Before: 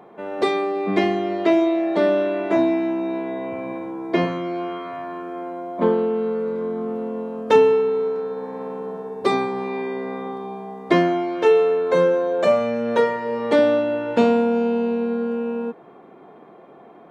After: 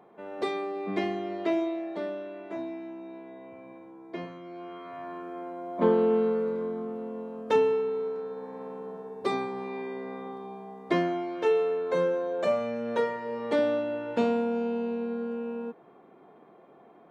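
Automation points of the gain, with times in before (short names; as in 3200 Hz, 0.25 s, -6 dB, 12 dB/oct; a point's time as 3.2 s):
1.58 s -10 dB
2.2 s -17.5 dB
4.41 s -17.5 dB
5.07 s -7.5 dB
5.57 s -7.5 dB
6.14 s -1 dB
6.93 s -9 dB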